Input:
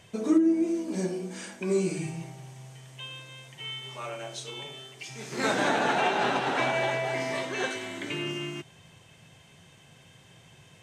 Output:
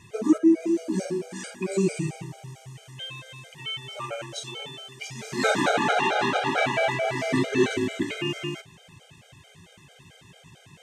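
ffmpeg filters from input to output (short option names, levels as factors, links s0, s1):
-filter_complex "[0:a]asettb=1/sr,asplit=3[s0][s1][s2];[s0]atrim=end=7.284[s3];[s1]atrim=start=7.28:end=8.03,asetpts=PTS-STARTPTS,afade=t=in:d=0.004:c=qsin,afade=t=out:st=0.746:d=0.004:c=qsin,lowshelf=f=440:t=q:w=1.5:g=10[s4];[s2]atrim=start=8.026[s5];[s3][s4]acrossfade=d=0.004:c1=hsin:c2=qsin[s6];[s6][s5]acrossfade=d=0.004:c1=qsin:c2=hsin,afftfilt=real='re*gt(sin(2*PI*4.5*pts/sr)*(1-2*mod(floor(b*sr/1024/410),2)),0)':imag='im*gt(sin(2*PI*4.5*pts/sr)*(1-2*mod(floor(b*sr/1024/410),2)),0)':win_size=1024:overlap=0.75,volume=2"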